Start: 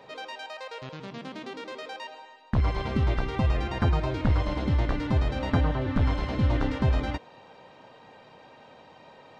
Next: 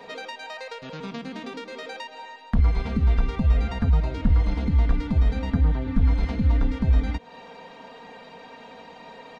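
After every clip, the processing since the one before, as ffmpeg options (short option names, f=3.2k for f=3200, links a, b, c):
-filter_complex "[0:a]aecho=1:1:4.3:0.87,acrossover=split=190[a][b];[b]acompressor=threshold=-37dB:ratio=10[c];[a][c]amix=inputs=2:normalize=0,volume=4.5dB"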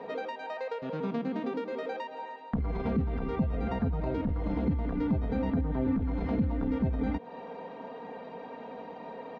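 -af "alimiter=limit=-20dB:level=0:latency=1:release=17,bandpass=f=370:t=q:w=0.61:csg=0,volume=4.5dB"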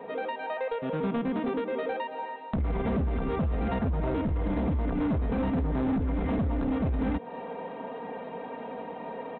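-af "dynaudnorm=f=120:g=3:m=4.5dB,aresample=8000,asoftclip=type=hard:threshold=-24dB,aresample=44100"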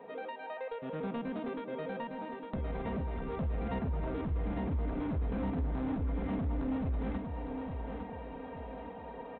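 -af "aecho=1:1:856|1712|2568|3424|4280:0.501|0.21|0.0884|0.0371|0.0156,volume=-8.5dB"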